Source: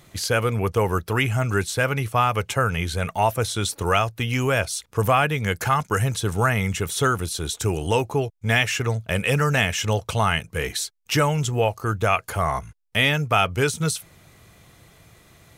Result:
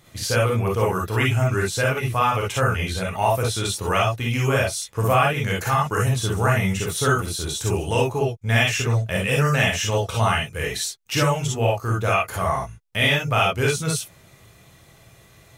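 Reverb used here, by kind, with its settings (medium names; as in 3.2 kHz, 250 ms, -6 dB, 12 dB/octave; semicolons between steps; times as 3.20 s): gated-style reverb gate 80 ms rising, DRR -3 dB; trim -4 dB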